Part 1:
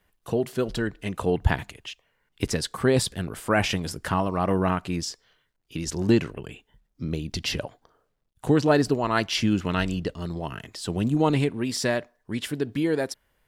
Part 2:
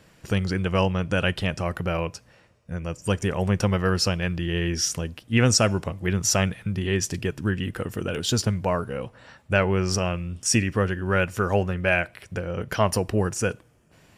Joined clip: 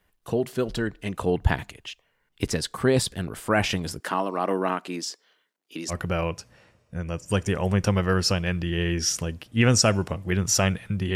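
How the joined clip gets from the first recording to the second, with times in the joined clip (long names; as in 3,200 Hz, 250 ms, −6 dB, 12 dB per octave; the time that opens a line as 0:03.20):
part 1
0:04.00–0:05.94: high-pass filter 230 Hz 24 dB per octave
0:05.91: continue with part 2 from 0:01.67, crossfade 0.06 s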